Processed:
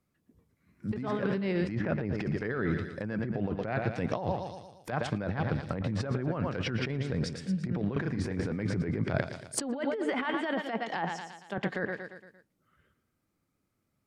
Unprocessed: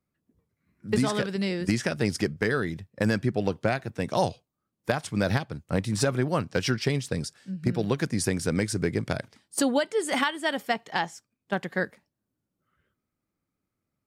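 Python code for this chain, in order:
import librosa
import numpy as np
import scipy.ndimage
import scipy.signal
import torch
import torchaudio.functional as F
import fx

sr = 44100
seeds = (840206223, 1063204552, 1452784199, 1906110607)

y = fx.doubler(x, sr, ms=33.0, db=-6.0, at=(7.93, 8.52))
y = fx.echo_feedback(y, sr, ms=115, feedback_pct=49, wet_db=-13.5)
y = fx.env_lowpass_down(y, sr, base_hz=2000.0, full_db=-23.5)
y = fx.spacing_loss(y, sr, db_at_10k=22, at=(1.75, 2.18))
y = fx.over_compress(y, sr, threshold_db=-31.0, ratio=-1.0)
y = fx.ellip_highpass(y, sr, hz=160.0, order=4, stop_db=40, at=(10.34, 11.58))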